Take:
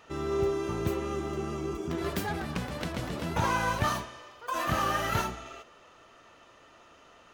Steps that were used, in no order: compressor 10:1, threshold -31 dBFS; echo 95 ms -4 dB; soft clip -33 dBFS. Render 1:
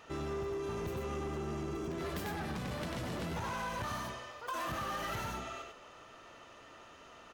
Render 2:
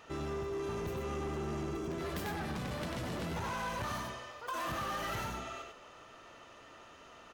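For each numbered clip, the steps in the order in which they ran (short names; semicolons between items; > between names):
echo > compressor > soft clip; compressor > echo > soft clip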